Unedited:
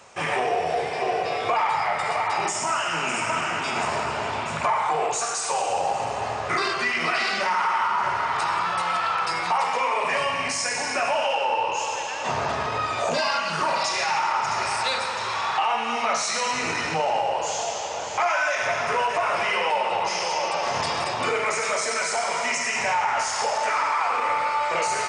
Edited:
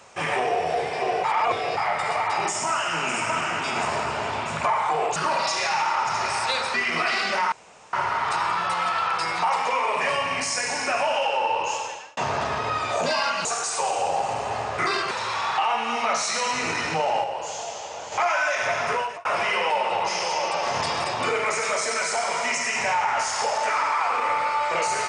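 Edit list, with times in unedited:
0:01.24–0:01.77: reverse
0:05.16–0:06.82: swap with 0:13.53–0:15.11
0:07.60–0:08.01: fill with room tone
0:11.80–0:12.25: fade out
0:17.24–0:18.12: clip gain −5 dB
0:18.91–0:19.25: fade out

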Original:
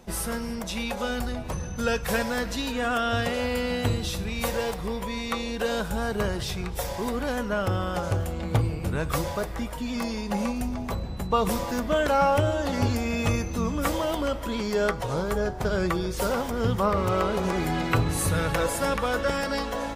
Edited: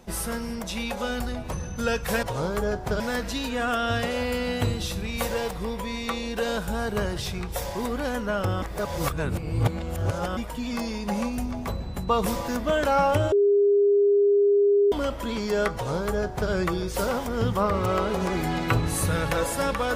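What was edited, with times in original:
0:07.85–0:09.60: reverse
0:12.55–0:14.15: beep over 405 Hz −16 dBFS
0:14.97–0:15.74: duplicate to 0:02.23

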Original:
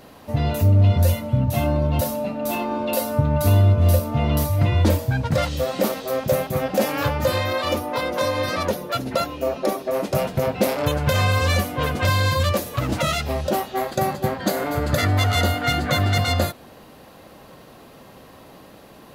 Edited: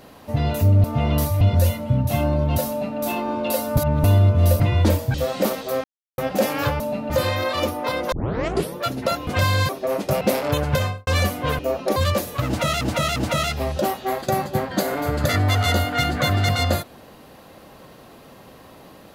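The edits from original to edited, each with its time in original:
0:02.12–0:02.42: duplicate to 0:07.19
0:03.20–0:03.47: reverse
0:04.03–0:04.60: move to 0:00.84
0:05.14–0:05.53: remove
0:06.23–0:06.57: silence
0:08.21: tape start 0.63 s
0:09.36–0:09.73: swap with 0:11.93–0:12.35
0:10.25–0:10.55: remove
0:11.06–0:11.41: fade out and dull
0:12.85–0:13.20: repeat, 3 plays

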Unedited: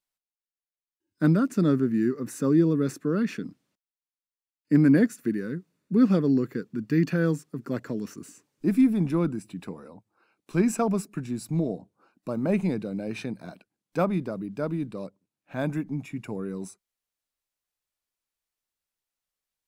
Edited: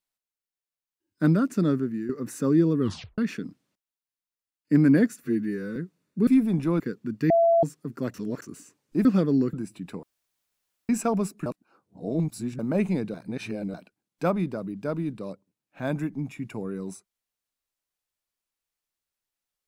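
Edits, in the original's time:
0:01.41–0:02.09: fade out equal-power, to −11 dB
0:02.80: tape stop 0.38 s
0:05.24–0:05.50: time-stretch 2×
0:06.01–0:06.49: swap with 0:08.74–0:09.27
0:06.99–0:07.32: beep over 672 Hz −16 dBFS
0:07.83–0:08.11: reverse
0:09.77–0:10.63: fill with room tone
0:11.20–0:12.33: reverse
0:12.88–0:13.48: reverse

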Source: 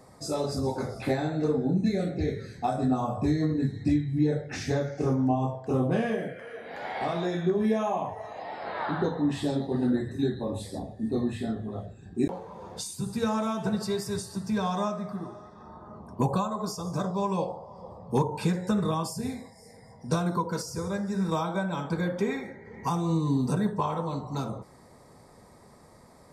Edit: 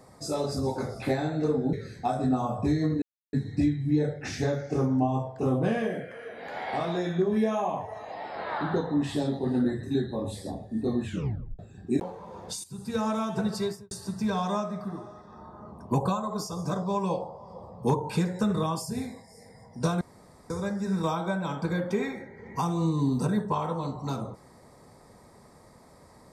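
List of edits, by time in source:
0:01.73–0:02.32: remove
0:03.61: splice in silence 0.31 s
0:11.33: tape stop 0.54 s
0:12.92–0:13.35: fade in, from −13.5 dB
0:13.91–0:14.19: fade out and dull
0:20.29–0:20.78: fill with room tone

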